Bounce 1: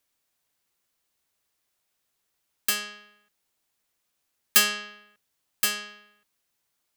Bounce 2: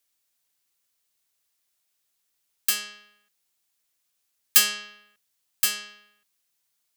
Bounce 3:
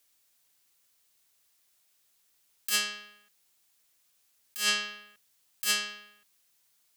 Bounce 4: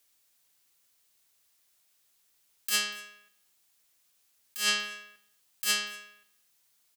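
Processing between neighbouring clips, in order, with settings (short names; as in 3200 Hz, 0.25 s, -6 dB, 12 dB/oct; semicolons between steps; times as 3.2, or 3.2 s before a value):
high shelf 2200 Hz +9.5 dB; gain -6.5 dB
negative-ratio compressor -29 dBFS, ratio -1
echo 0.239 s -22 dB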